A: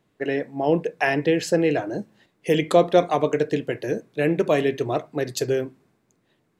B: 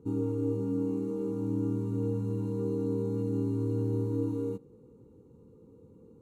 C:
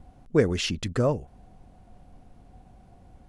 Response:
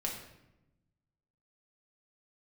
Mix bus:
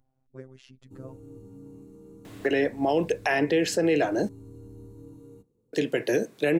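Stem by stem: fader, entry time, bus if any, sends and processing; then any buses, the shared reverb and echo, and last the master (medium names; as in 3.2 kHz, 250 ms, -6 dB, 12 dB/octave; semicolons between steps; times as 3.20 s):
0.0 dB, 2.25 s, muted 4.29–5.73 s, no send, high-pass 180 Hz; three bands compressed up and down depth 70%
-16.5 dB, 0.85 s, no send, octave divider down 1 oct, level -5 dB; treble shelf 3.6 kHz +7.5 dB
-19.5 dB, 0.00 s, no send, treble shelf 2.5 kHz -11.5 dB; robot voice 131 Hz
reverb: none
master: treble shelf 5 kHz +5.5 dB; peak limiter -14 dBFS, peak gain reduction 7 dB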